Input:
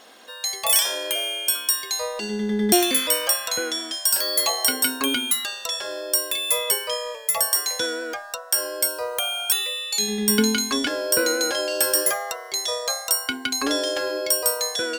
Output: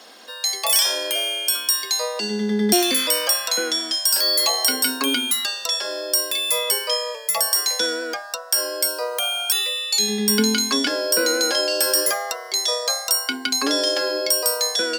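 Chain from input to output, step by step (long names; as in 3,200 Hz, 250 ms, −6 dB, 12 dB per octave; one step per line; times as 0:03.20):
Butterworth high-pass 160 Hz 72 dB per octave
in parallel at +0.5 dB: brickwall limiter −14.5 dBFS, peak gain reduction 9.5 dB
on the sum: parametric band 4,900 Hz +8.5 dB 0.36 octaves
level −4 dB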